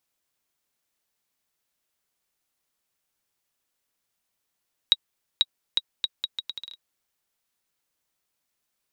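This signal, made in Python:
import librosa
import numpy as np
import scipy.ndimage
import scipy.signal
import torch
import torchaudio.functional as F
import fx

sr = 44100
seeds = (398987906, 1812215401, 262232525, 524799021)

y = fx.bouncing_ball(sr, first_gap_s=0.49, ratio=0.74, hz=3820.0, decay_ms=40.0, level_db=-4.5)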